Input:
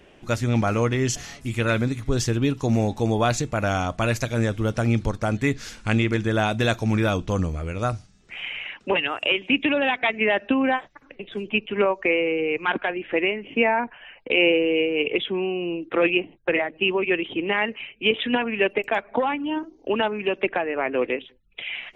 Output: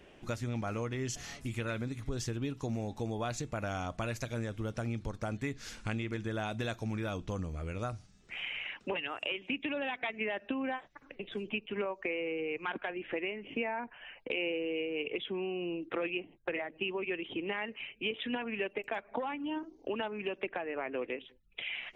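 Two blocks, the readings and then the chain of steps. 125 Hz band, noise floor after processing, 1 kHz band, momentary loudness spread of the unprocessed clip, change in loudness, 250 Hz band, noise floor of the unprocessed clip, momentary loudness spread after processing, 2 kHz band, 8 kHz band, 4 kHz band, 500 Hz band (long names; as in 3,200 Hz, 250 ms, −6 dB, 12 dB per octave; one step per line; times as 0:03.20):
−13.5 dB, −61 dBFS, −13.5 dB, 8 LU, −13.5 dB, −13.0 dB, −55 dBFS, 5 LU, −13.5 dB, −12.0 dB, −13.0 dB, −13.5 dB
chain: downward compressor 3 to 1, threshold −30 dBFS, peak gain reduction 11.5 dB
level −5 dB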